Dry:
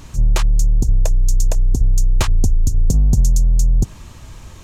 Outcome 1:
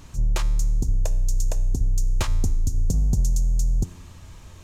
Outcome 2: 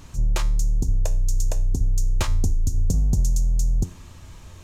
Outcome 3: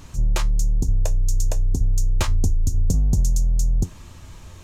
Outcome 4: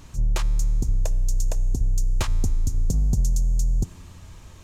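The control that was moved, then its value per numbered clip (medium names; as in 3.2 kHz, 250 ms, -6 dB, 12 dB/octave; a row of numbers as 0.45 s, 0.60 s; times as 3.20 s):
feedback comb, decay: 1 s, 0.45 s, 0.19 s, 2.2 s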